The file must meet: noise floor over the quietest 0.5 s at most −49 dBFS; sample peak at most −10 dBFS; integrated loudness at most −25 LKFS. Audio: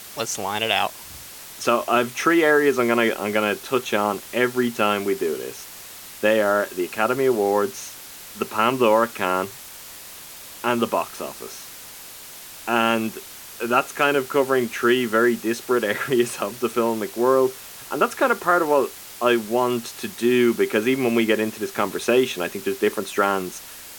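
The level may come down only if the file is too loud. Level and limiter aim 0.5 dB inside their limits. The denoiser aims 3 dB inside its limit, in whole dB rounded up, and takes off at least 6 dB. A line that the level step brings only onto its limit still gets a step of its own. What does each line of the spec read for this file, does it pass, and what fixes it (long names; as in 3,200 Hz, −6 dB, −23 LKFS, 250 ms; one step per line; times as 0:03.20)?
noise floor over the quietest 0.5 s −40 dBFS: out of spec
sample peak −4.5 dBFS: out of spec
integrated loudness −21.5 LKFS: out of spec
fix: broadband denoise 8 dB, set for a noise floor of −40 dBFS
level −4 dB
brickwall limiter −10.5 dBFS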